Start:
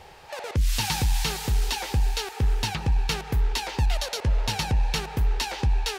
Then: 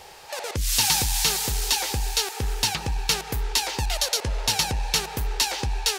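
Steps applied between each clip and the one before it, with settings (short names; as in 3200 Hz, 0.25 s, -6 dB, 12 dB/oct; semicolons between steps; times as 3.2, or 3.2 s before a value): tone controls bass -7 dB, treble +9 dB; gain +2 dB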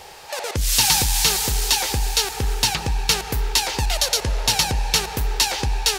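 reverb RT60 5.0 s, pre-delay 32 ms, DRR 17 dB; gain +4 dB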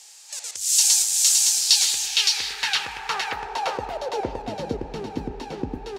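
band-pass sweep 7300 Hz -> 280 Hz, 1.34–4.44; echo 0.565 s -3.5 dB; gain +5.5 dB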